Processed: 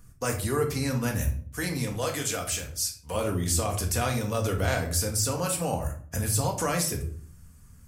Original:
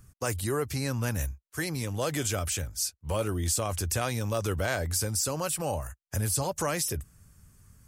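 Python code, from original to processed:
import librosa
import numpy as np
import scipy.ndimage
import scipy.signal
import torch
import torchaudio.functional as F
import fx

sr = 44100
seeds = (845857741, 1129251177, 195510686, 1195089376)

y = fx.low_shelf(x, sr, hz=300.0, db=-9.0, at=(1.92, 3.15))
y = fx.room_shoebox(y, sr, seeds[0], volume_m3=530.0, walls='furnished', distance_m=1.8)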